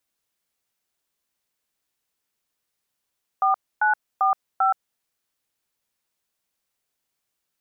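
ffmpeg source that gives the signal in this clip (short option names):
-f lavfi -i "aevalsrc='0.112*clip(min(mod(t,0.394),0.123-mod(t,0.394))/0.002,0,1)*(eq(floor(t/0.394),0)*(sin(2*PI*770*mod(t,0.394))+sin(2*PI*1209*mod(t,0.394)))+eq(floor(t/0.394),1)*(sin(2*PI*852*mod(t,0.394))+sin(2*PI*1477*mod(t,0.394)))+eq(floor(t/0.394),2)*(sin(2*PI*770*mod(t,0.394))+sin(2*PI*1209*mod(t,0.394)))+eq(floor(t/0.394),3)*(sin(2*PI*770*mod(t,0.394))+sin(2*PI*1336*mod(t,0.394))))':d=1.576:s=44100"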